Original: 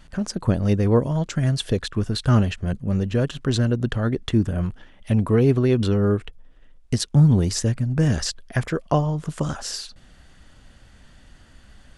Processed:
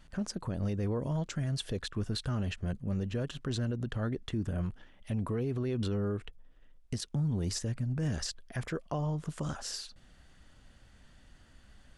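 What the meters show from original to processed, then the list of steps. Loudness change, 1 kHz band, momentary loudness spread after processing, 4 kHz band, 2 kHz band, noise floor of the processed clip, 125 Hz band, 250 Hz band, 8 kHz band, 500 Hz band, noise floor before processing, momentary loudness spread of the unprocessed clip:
-13.0 dB, -13.0 dB, 6 LU, -10.0 dB, -11.5 dB, -60 dBFS, -13.0 dB, -13.0 dB, -10.0 dB, -14.0 dB, -51 dBFS, 10 LU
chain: peak limiter -16.5 dBFS, peak gain reduction 9.5 dB; trim -8.5 dB

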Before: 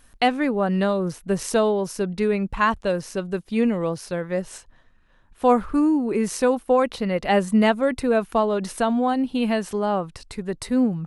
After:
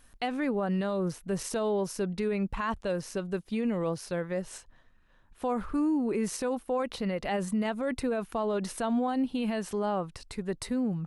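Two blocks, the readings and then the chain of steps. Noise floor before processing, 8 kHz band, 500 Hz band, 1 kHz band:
-55 dBFS, -5.5 dB, -9.0 dB, -10.5 dB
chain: peak limiter -17.5 dBFS, peak gain reduction 10.5 dB; trim -4.5 dB

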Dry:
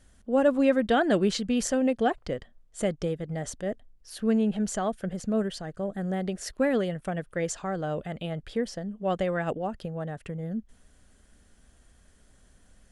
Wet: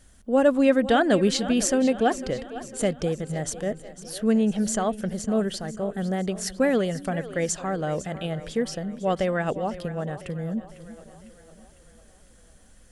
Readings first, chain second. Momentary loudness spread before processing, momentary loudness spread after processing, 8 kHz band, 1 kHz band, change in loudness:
12 LU, 11 LU, +7.0 dB, +3.5 dB, +3.5 dB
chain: treble shelf 5.8 kHz +6 dB; on a send: two-band feedback delay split 310 Hz, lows 350 ms, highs 502 ms, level -14.5 dB; on the sum: trim +3 dB

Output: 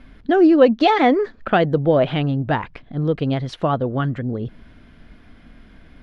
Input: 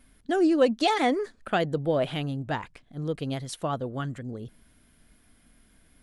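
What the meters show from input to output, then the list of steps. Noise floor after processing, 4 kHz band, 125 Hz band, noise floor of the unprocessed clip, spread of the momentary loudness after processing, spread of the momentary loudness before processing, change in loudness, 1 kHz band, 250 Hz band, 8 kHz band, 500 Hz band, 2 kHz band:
-48 dBFS, +4.0 dB, +10.5 dB, -62 dBFS, 12 LU, 15 LU, +9.0 dB, +8.5 dB, +9.5 dB, no reading, +9.0 dB, +7.5 dB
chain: in parallel at +1 dB: compression, threshold -40 dBFS, peak gain reduction 21.5 dB; on the sum: distance through air 250 m; trim +8.5 dB

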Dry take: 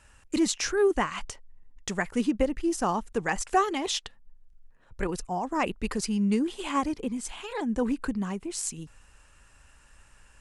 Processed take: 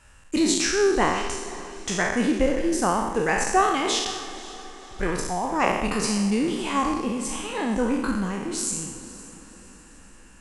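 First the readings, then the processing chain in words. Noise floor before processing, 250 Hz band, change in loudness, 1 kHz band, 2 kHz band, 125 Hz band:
-58 dBFS, +3.5 dB, +4.5 dB, +5.5 dB, +7.0 dB, +4.0 dB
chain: spectral sustain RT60 1.03 s; on a send: echo that smears into a reverb 520 ms, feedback 49%, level -16 dB; on the sum: trim +1.5 dB

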